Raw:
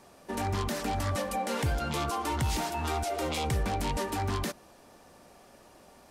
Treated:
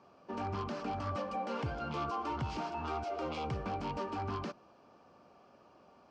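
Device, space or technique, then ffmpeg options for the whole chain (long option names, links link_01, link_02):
guitar cabinet: -af "highpass=97,equalizer=frequency=1200:width_type=q:width=4:gain=5,equalizer=frequency=1900:width_type=q:width=4:gain=-10,equalizer=frequency=3700:width_type=q:width=4:gain=-10,lowpass=frequency=4500:width=0.5412,lowpass=frequency=4500:width=1.3066,volume=-5.5dB"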